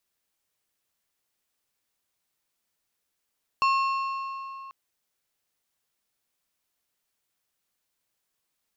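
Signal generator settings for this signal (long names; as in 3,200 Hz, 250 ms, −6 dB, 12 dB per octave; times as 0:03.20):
struck metal plate, length 1.09 s, lowest mode 1,080 Hz, decay 3.11 s, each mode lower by 7.5 dB, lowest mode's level −19 dB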